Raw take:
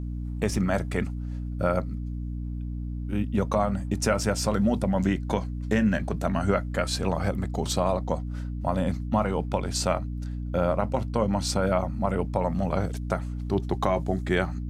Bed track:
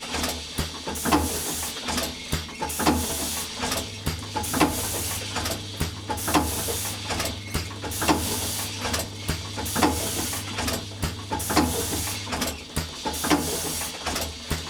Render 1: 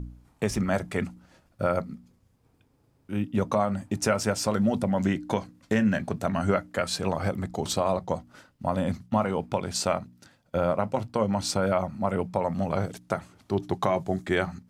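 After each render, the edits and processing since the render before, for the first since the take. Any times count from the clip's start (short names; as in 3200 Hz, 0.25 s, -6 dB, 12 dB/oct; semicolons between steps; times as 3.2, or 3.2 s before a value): de-hum 60 Hz, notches 5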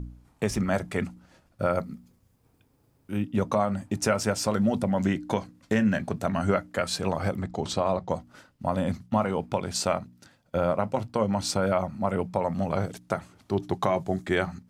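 1.78–3.18 high shelf 11000 Hz +10.5 dB; 7.41–8.1 air absorption 62 m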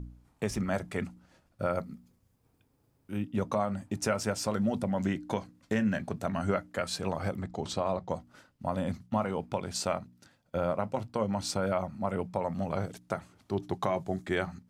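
gain -5 dB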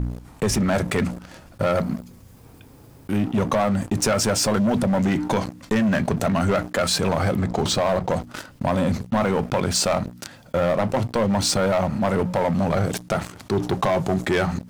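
sample leveller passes 3; fast leveller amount 50%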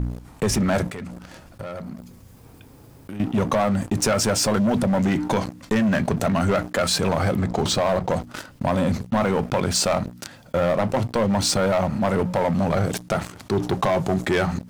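0.88–3.2 compressor, threshold -31 dBFS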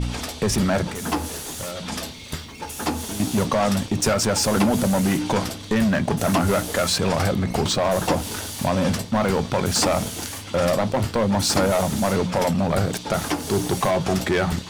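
add bed track -4 dB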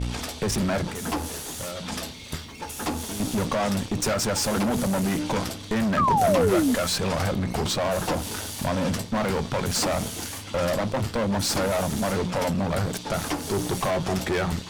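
tube stage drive 20 dB, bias 0.5; 5.97–6.75 painted sound fall 230–1300 Hz -21 dBFS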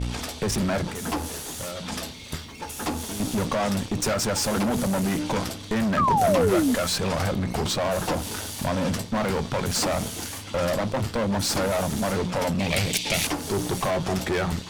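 12.59–13.27 resonant high shelf 1800 Hz +8.5 dB, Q 3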